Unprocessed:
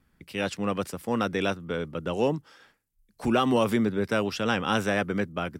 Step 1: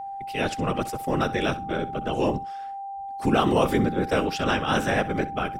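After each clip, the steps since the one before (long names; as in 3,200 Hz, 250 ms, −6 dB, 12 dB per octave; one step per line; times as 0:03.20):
random phases in short frames
flutter between parallel walls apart 11 metres, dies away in 0.23 s
steady tone 790 Hz −34 dBFS
level +2 dB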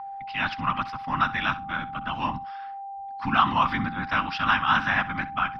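drawn EQ curve 270 Hz 0 dB, 430 Hz −24 dB, 1,000 Hz +14 dB, 5,100 Hz +3 dB, 7,400 Hz −28 dB
level −5.5 dB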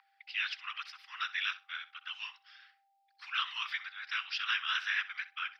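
Bessel high-pass filter 2,700 Hz, order 6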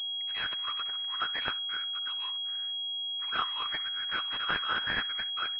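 switching amplifier with a slow clock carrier 3,300 Hz
level +7.5 dB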